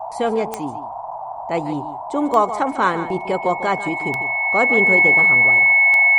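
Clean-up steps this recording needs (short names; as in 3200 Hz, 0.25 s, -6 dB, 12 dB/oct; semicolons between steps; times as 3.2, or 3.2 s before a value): de-click; notch 2200 Hz, Q 30; noise print and reduce 30 dB; inverse comb 0.148 s -13 dB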